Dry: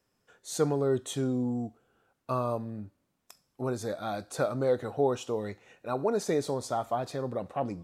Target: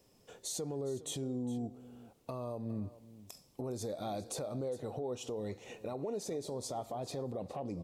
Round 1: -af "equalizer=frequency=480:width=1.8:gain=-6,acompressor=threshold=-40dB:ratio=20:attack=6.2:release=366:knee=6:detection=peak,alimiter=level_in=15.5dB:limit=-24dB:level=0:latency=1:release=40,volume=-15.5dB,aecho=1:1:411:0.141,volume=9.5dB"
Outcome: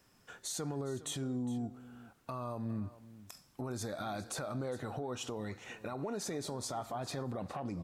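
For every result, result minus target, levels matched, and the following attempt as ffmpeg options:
2,000 Hz band +9.0 dB; 500 Hz band −3.0 dB
-af "equalizer=frequency=480:width=1.8:gain=-6,acompressor=threshold=-40dB:ratio=20:attack=6.2:release=366:knee=6:detection=peak,equalizer=frequency=1500:width=1.7:gain=-13,alimiter=level_in=15.5dB:limit=-24dB:level=0:latency=1:release=40,volume=-15.5dB,aecho=1:1:411:0.141,volume=9.5dB"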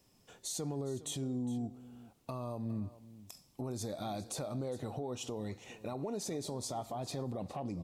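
500 Hz band −2.5 dB
-af "equalizer=frequency=480:width=1.8:gain=2,acompressor=threshold=-40dB:ratio=20:attack=6.2:release=366:knee=6:detection=peak,equalizer=frequency=1500:width=1.7:gain=-13,alimiter=level_in=15.5dB:limit=-24dB:level=0:latency=1:release=40,volume=-15.5dB,aecho=1:1:411:0.141,volume=9.5dB"

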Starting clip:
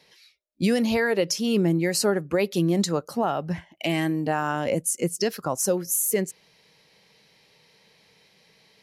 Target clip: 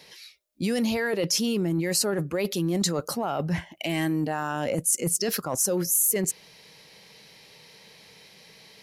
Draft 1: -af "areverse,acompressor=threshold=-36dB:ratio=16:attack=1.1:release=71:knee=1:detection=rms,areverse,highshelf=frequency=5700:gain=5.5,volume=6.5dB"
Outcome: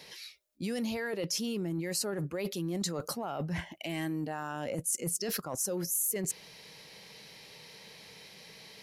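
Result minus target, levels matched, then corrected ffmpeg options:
downward compressor: peak gain reduction +8.5 dB
-af "areverse,acompressor=threshold=-27dB:ratio=16:attack=1.1:release=71:knee=1:detection=rms,areverse,highshelf=frequency=5700:gain=5.5,volume=6.5dB"

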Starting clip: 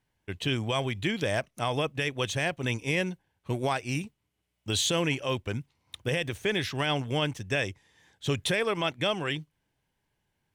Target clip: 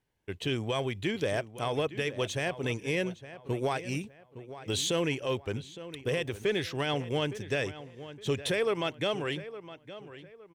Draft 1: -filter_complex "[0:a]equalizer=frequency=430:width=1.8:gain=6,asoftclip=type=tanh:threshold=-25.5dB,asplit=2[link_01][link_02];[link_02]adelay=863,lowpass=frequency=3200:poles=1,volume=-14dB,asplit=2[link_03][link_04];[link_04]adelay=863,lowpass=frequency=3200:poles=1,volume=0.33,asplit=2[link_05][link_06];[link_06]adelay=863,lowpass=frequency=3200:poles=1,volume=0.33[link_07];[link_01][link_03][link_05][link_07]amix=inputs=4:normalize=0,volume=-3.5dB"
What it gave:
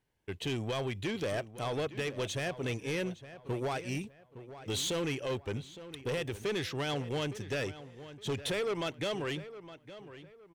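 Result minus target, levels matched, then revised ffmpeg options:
soft clipping: distortion +15 dB
-filter_complex "[0:a]equalizer=frequency=430:width=1.8:gain=6,asoftclip=type=tanh:threshold=-14dB,asplit=2[link_01][link_02];[link_02]adelay=863,lowpass=frequency=3200:poles=1,volume=-14dB,asplit=2[link_03][link_04];[link_04]adelay=863,lowpass=frequency=3200:poles=1,volume=0.33,asplit=2[link_05][link_06];[link_06]adelay=863,lowpass=frequency=3200:poles=1,volume=0.33[link_07];[link_01][link_03][link_05][link_07]amix=inputs=4:normalize=0,volume=-3.5dB"

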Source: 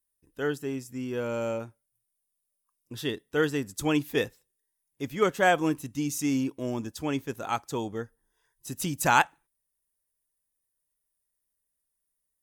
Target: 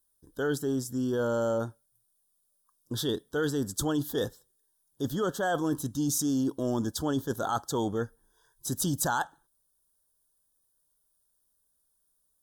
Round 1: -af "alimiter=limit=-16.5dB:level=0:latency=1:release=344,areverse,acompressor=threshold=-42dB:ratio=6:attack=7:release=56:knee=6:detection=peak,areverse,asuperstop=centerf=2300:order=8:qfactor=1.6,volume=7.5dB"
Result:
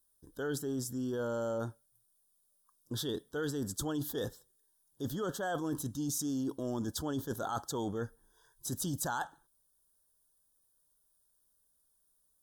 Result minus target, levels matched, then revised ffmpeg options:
downward compressor: peak gain reduction +7 dB
-af "alimiter=limit=-16.5dB:level=0:latency=1:release=344,areverse,acompressor=threshold=-33.5dB:ratio=6:attack=7:release=56:knee=6:detection=peak,areverse,asuperstop=centerf=2300:order=8:qfactor=1.6,volume=7.5dB"

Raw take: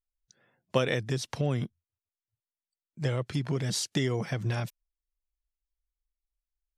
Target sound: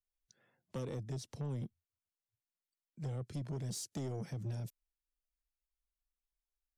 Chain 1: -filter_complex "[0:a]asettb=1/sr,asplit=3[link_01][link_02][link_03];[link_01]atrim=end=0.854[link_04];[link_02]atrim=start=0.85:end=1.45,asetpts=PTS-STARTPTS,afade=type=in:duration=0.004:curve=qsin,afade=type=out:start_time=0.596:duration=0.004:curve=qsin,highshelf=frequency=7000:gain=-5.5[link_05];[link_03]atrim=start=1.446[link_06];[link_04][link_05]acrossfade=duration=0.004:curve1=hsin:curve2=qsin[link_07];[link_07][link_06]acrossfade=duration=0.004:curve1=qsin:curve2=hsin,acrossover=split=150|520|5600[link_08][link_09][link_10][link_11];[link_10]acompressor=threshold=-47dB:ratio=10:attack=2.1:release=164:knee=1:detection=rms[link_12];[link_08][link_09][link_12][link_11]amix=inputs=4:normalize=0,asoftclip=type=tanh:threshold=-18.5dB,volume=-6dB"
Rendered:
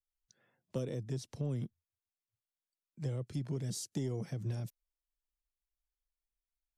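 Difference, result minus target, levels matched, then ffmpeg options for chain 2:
soft clipping: distortion −13 dB
-filter_complex "[0:a]asettb=1/sr,asplit=3[link_01][link_02][link_03];[link_01]atrim=end=0.854[link_04];[link_02]atrim=start=0.85:end=1.45,asetpts=PTS-STARTPTS,afade=type=in:duration=0.004:curve=qsin,afade=type=out:start_time=0.596:duration=0.004:curve=qsin,highshelf=frequency=7000:gain=-5.5[link_05];[link_03]atrim=start=1.446[link_06];[link_04][link_05]acrossfade=duration=0.004:curve1=hsin:curve2=qsin[link_07];[link_07][link_06]acrossfade=duration=0.004:curve1=qsin:curve2=hsin,acrossover=split=150|520|5600[link_08][link_09][link_10][link_11];[link_10]acompressor=threshold=-47dB:ratio=10:attack=2.1:release=164:knee=1:detection=rms[link_12];[link_08][link_09][link_12][link_11]amix=inputs=4:normalize=0,asoftclip=type=tanh:threshold=-28.5dB,volume=-6dB"

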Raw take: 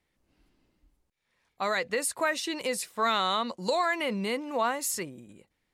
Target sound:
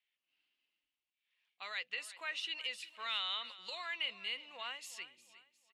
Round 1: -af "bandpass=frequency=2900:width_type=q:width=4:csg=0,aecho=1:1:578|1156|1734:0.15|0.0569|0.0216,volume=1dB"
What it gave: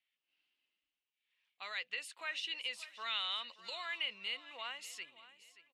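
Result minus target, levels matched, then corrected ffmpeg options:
echo 221 ms late
-af "bandpass=frequency=2900:width_type=q:width=4:csg=0,aecho=1:1:357|714|1071:0.15|0.0569|0.0216,volume=1dB"

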